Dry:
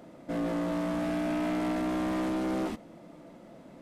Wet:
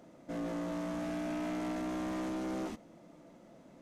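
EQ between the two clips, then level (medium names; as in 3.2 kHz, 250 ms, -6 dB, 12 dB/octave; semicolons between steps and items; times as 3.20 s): peaking EQ 6.3 kHz +6.5 dB 0.43 oct; -6.5 dB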